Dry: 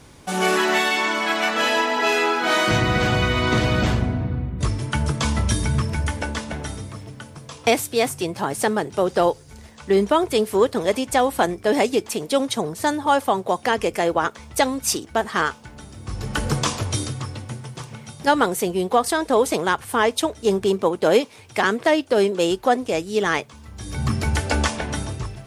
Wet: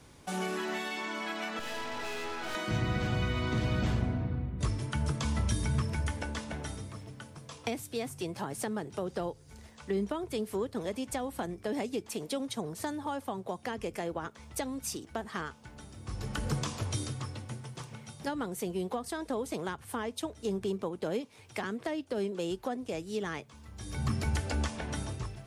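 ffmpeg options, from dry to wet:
ffmpeg -i in.wav -filter_complex "[0:a]asettb=1/sr,asplit=3[link_01][link_02][link_03];[link_01]atrim=end=1.594[link_04];[link_02]atrim=start=1.59:end=2.55,asetpts=PTS-STARTPTS,afade=type=in:duration=0.004:curve=qsin,afade=type=out:start_time=0.956:duration=0.004:curve=qsin,aeval=exprs='(tanh(17.8*val(0)+0.75)-tanh(0.75))/17.8':channel_layout=same[link_05];[link_03]atrim=start=2.546[link_06];[link_04][link_05]acrossfade=duration=0.004:curve1=hsin:curve2=qsin[link_07];[link_07][link_06]acrossfade=duration=0.004:curve1=qsin:curve2=hsin,acrossover=split=270[link_08][link_09];[link_09]acompressor=threshold=-26dB:ratio=6[link_10];[link_08][link_10]amix=inputs=2:normalize=0,volume=-8.5dB" out.wav

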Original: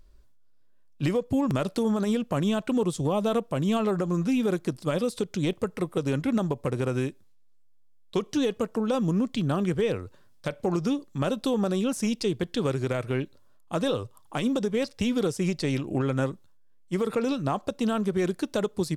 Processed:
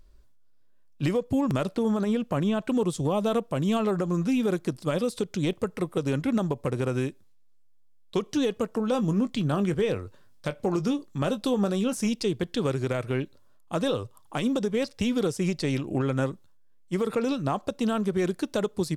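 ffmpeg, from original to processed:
ffmpeg -i in.wav -filter_complex "[0:a]asettb=1/sr,asplit=3[link_01][link_02][link_03];[link_01]atrim=end=1.664[link_04];[link_02]atrim=start=1.66:end=2.68,asetpts=PTS-STARTPTS,afade=type=in:duration=0.004:curve=qsin,afade=type=out:start_time=1.016:duration=0.004:curve=qsin,acrossover=split=3100[link_05][link_06];[link_06]acompressor=threshold=-48dB:ratio=4:attack=1:release=60[link_07];[link_05][link_07]amix=inputs=2:normalize=0[link_08];[link_03]atrim=start=2.676[link_09];[link_04][link_08]acrossfade=duration=0.004:curve1=hsin:curve2=qsin[link_10];[link_10][link_09]acrossfade=duration=0.004:curve1=qsin:curve2=hsin,asettb=1/sr,asplit=3[link_11][link_12][link_13];[link_11]atrim=end=8.744[link_14];[link_12]atrim=start=8.74:end=12.09,asetpts=PTS-STARTPTS,afade=type=in:duration=0.004:curve=qsin,afade=type=out:start_time=3.346:duration=0.004:curve=qsin,asplit=2[link_15][link_16];[link_16]adelay=20,volume=-12dB[link_17];[link_15][link_17]amix=inputs=2:normalize=0,atrim=end_sample=147735[link_18];[link_13]atrim=start=12.086[link_19];[link_14][link_18]acrossfade=duration=0.004:curve1=hsin:curve2=qsin[link_20];[link_20][link_19]acrossfade=duration=0.004:curve1=qsin:curve2=hsin" out.wav

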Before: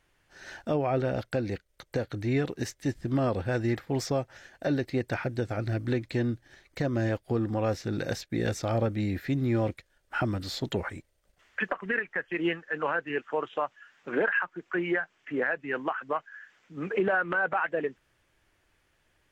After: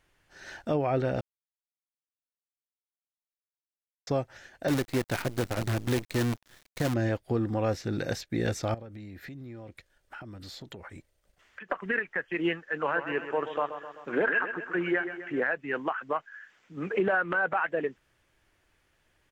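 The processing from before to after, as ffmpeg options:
ffmpeg -i in.wav -filter_complex "[0:a]asettb=1/sr,asplit=3[link_01][link_02][link_03];[link_01]atrim=end=4.684[link_04];[link_02]atrim=start=4.68:end=6.94,asetpts=PTS-STARTPTS,afade=type=in:duration=0.004:curve=qsin,afade=type=out:start_time=2.256:duration=0.004:curve=qsin,acrusher=bits=6:dc=4:mix=0:aa=0.000001[link_05];[link_03]atrim=start=6.936[link_06];[link_04][link_05]acrossfade=duration=0.004:curve1=hsin:curve2=qsin[link_07];[link_07][link_06]acrossfade=duration=0.004:curve1=qsin:curve2=hsin,asettb=1/sr,asplit=3[link_08][link_09][link_10];[link_08]atrim=end=8.744[link_11];[link_09]atrim=start=8.74:end=11.7,asetpts=PTS-STARTPTS,afade=type=in:duration=0.004:curve=qsin,afade=type=out:start_time=2.956:duration=0.004:curve=qsin,acompressor=threshold=-40dB:ratio=12:attack=3.2:release=140:knee=1:detection=peak[link_12];[link_10]atrim=start=11.696[link_13];[link_11][link_12]acrossfade=duration=0.004:curve1=hsin:curve2=qsin[link_14];[link_14][link_13]acrossfade=duration=0.004:curve1=qsin:curve2=hsin,asplit=3[link_15][link_16][link_17];[link_15]afade=type=out:start_time=12.89:duration=0.02[link_18];[link_16]aecho=1:1:129|258|387|516|645|774|903:0.299|0.176|0.104|0.0613|0.0362|0.0213|0.0126,afade=type=in:start_time=12.89:duration=0.02,afade=type=out:start_time=15.39:duration=0.02[link_19];[link_17]afade=type=in:start_time=15.39:duration=0.02[link_20];[link_18][link_19][link_20]amix=inputs=3:normalize=0,asplit=3[link_21][link_22][link_23];[link_21]atrim=end=1.21,asetpts=PTS-STARTPTS,afade=type=out:start_time=1.206:duration=0.004:curve=hsin[link_24];[link_22]atrim=start=1.21:end=4.07,asetpts=PTS-STARTPTS,volume=0[link_25];[link_23]atrim=start=4.07,asetpts=PTS-STARTPTS,afade=type=in:duration=0.004:curve=hsin[link_26];[link_24][link_25][link_26]concat=n=3:v=0:a=1" out.wav

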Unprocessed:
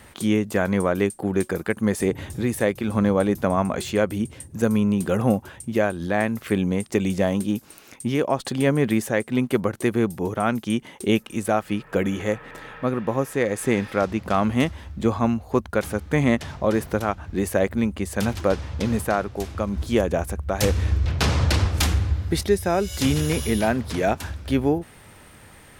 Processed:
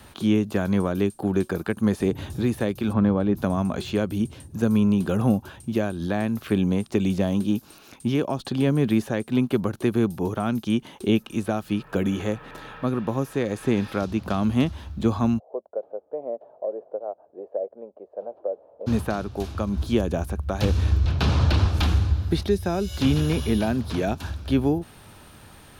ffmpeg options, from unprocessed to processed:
ffmpeg -i in.wav -filter_complex "[0:a]asplit=3[link_01][link_02][link_03];[link_01]afade=type=out:start_time=2.92:duration=0.02[link_04];[link_02]lowpass=2400,afade=type=in:start_time=2.92:duration=0.02,afade=type=out:start_time=3.36:duration=0.02[link_05];[link_03]afade=type=in:start_time=3.36:duration=0.02[link_06];[link_04][link_05][link_06]amix=inputs=3:normalize=0,asplit=3[link_07][link_08][link_09];[link_07]afade=type=out:start_time=15.38:duration=0.02[link_10];[link_08]asuperpass=centerf=560:order=4:qfactor=2.6,afade=type=in:start_time=15.38:duration=0.02,afade=type=out:start_time=18.86:duration=0.02[link_11];[link_09]afade=type=in:start_time=18.86:duration=0.02[link_12];[link_10][link_11][link_12]amix=inputs=3:normalize=0,acrossover=split=3700[link_13][link_14];[link_14]acompressor=threshold=-43dB:ratio=4:attack=1:release=60[link_15];[link_13][link_15]amix=inputs=2:normalize=0,equalizer=frequency=500:width_type=o:width=0.33:gain=-4,equalizer=frequency=2000:width_type=o:width=0.33:gain=-9,equalizer=frequency=4000:width_type=o:width=0.33:gain=3,equalizer=frequency=8000:width_type=o:width=0.33:gain=-5,acrossover=split=370|3000[link_16][link_17][link_18];[link_17]acompressor=threshold=-28dB:ratio=6[link_19];[link_16][link_19][link_18]amix=inputs=3:normalize=0,volume=1dB" out.wav

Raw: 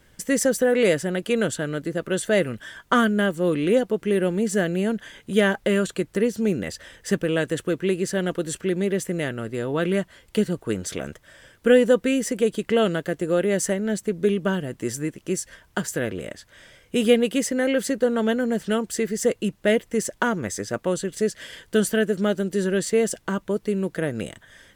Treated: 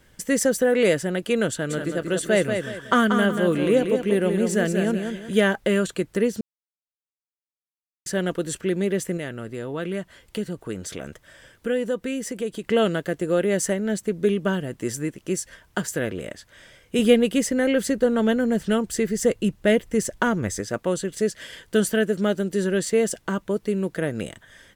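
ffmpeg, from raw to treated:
ffmpeg -i in.wav -filter_complex "[0:a]asplit=3[link_01][link_02][link_03];[link_01]afade=type=out:start_time=1.69:duration=0.02[link_04];[link_02]aecho=1:1:185|370|555|740:0.501|0.165|0.0546|0.018,afade=type=in:start_time=1.69:duration=0.02,afade=type=out:start_time=5.4:duration=0.02[link_05];[link_03]afade=type=in:start_time=5.4:duration=0.02[link_06];[link_04][link_05][link_06]amix=inputs=3:normalize=0,asettb=1/sr,asplit=3[link_07][link_08][link_09];[link_07]atrim=end=9.174[link_10];[link_08]atrim=start=9.17:end=12.64,asetpts=PTS-STARTPTS,afade=type=in:duration=0.004:curve=qsin,afade=type=out:start_time=3.466:duration=0.004:curve=qsin,acompressor=threshold=-35dB:ratio=1.5:attack=3.2:release=140:knee=1:detection=peak[link_11];[link_09]atrim=start=12.636[link_12];[link_10][link_11]acrossfade=duration=0.004:curve1=hsin:curve2=qsin[link_13];[link_13][link_12]acrossfade=duration=0.004:curve1=qsin:curve2=hsin,asettb=1/sr,asplit=3[link_14][link_15][link_16];[link_14]atrim=end=16.994[link_17];[link_15]atrim=start=16.99:end=20.61,asetpts=PTS-STARTPTS,afade=type=in:duration=0.004:curve=qsin,afade=type=out:start_time=3.616:duration=0.004:curve=qsin,lowshelf=frequency=110:gain=12[link_18];[link_16]atrim=start=20.606[link_19];[link_17][link_18]acrossfade=duration=0.004:curve1=hsin:curve2=qsin[link_20];[link_20][link_19]acrossfade=duration=0.004:curve1=qsin:curve2=hsin,asplit=3[link_21][link_22][link_23];[link_21]atrim=end=6.41,asetpts=PTS-STARTPTS,afade=type=out:start_time=6.406:duration=0.004:curve=hsin[link_24];[link_22]atrim=start=6.41:end=8.06,asetpts=PTS-STARTPTS,volume=0[link_25];[link_23]atrim=start=8.06,asetpts=PTS-STARTPTS,afade=type=in:duration=0.004:curve=hsin[link_26];[link_24][link_25][link_26]concat=n=3:v=0:a=1" out.wav

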